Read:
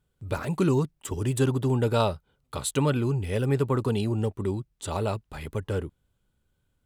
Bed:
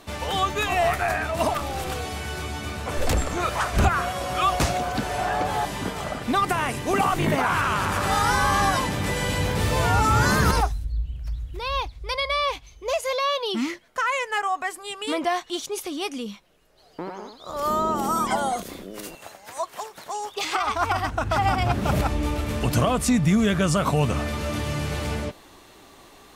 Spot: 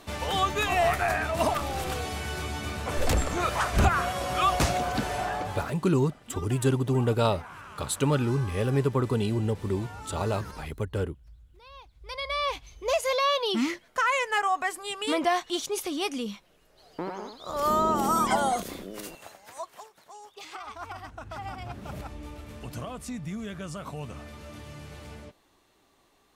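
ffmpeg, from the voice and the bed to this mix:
ffmpeg -i stem1.wav -i stem2.wav -filter_complex "[0:a]adelay=5250,volume=-0.5dB[link_01];[1:a]volume=19.5dB,afade=type=out:start_time=5.02:duration=0.75:silence=0.1,afade=type=in:start_time=11.88:duration=0.91:silence=0.0841395,afade=type=out:start_time=18.64:duration=1.33:silence=0.16788[link_02];[link_01][link_02]amix=inputs=2:normalize=0" out.wav

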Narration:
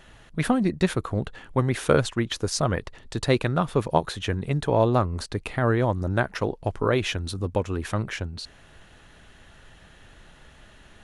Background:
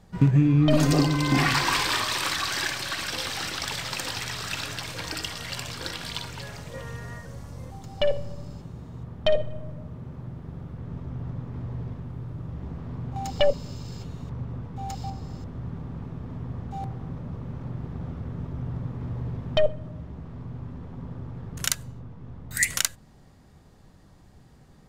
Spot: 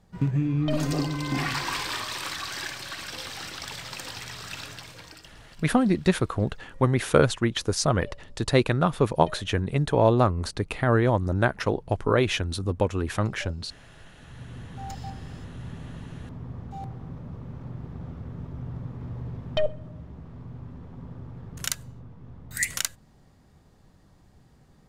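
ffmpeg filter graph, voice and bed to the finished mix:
ffmpeg -i stem1.wav -i stem2.wav -filter_complex "[0:a]adelay=5250,volume=1dB[link_01];[1:a]volume=12dB,afade=type=out:start_time=4.64:duration=0.67:silence=0.16788,afade=type=in:start_time=14.14:duration=0.58:silence=0.125893[link_02];[link_01][link_02]amix=inputs=2:normalize=0" out.wav

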